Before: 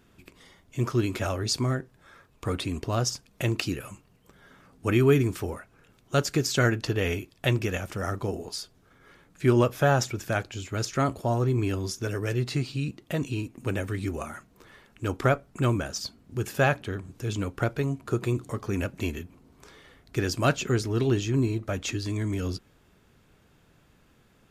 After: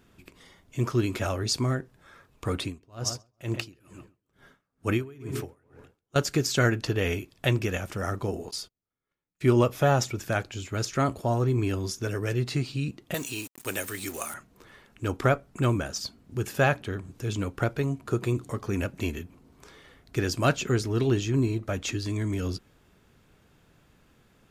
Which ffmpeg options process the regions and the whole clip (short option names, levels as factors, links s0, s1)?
-filter_complex "[0:a]asettb=1/sr,asplit=3[s0][s1][s2];[s0]atrim=end=2.644[s3];[s1]atrim=start=2.64:end=6.16,asetpts=PTS-STARTPTS,afade=t=in:d=0.004:c=qsin,afade=t=out:st=3.516:d=0.004:c=qsin,asplit=2[s4][s5];[s5]adelay=135,lowpass=f=2200:p=1,volume=0.282,asplit=2[s6][s7];[s7]adelay=135,lowpass=f=2200:p=1,volume=0.48,asplit=2[s8][s9];[s9]adelay=135,lowpass=f=2200:p=1,volume=0.48,asplit=2[s10][s11];[s11]adelay=135,lowpass=f=2200:p=1,volume=0.48,asplit=2[s12][s13];[s13]adelay=135,lowpass=f=2200:p=1,volume=0.48[s14];[s4][s6][s8][s10][s12][s14]amix=inputs=6:normalize=0,atrim=end_sample=155232,aeval=exprs='val(0)*pow(10,-29*(0.5-0.5*cos(2*PI*2.2*n/s))/20)':c=same[s15];[s2]atrim=start=6.156[s16];[s3][s15]acrossfade=d=0.004:c1=hsin:c2=qsin[s17];[s17][s16]acrossfade=d=0.004:c1=qsin:c2=hsin,asettb=1/sr,asplit=3[s18][s19][s20];[s18]atrim=end=8.514[s21];[s19]atrim=start=8.51:end=10.19,asetpts=PTS-STARTPTS,afade=t=in:d=0.004:c=qsin,afade=t=out:st=1.676:d=0.004:c=qsin,bandreject=f=1600:w=9.1,agate=range=0.0224:threshold=0.00282:ratio=16:release=100:detection=peak[s22];[s20]atrim=start=10.186[s23];[s21][s22]acrossfade=d=0.004:c1=hsin:c2=qsin[s24];[s24][s23]acrossfade=d=0.004:c1=qsin:c2=hsin,asettb=1/sr,asplit=3[s25][s26][s27];[s25]atrim=end=13.144[s28];[s26]atrim=start=13.14:end=14.34,asetpts=PTS-STARTPTS,afade=t=in:d=0.004:c=qsin,afade=t=out:st=1.196:d=0.004:c=qsin,aemphasis=mode=production:type=riaa,acrusher=bits=6:mix=0:aa=0.5[s29];[s27]atrim=start=14.336[s30];[s28][s29]acrossfade=d=0.004:c1=hsin:c2=qsin[s31];[s31][s30]acrossfade=d=0.004:c1=qsin:c2=hsin"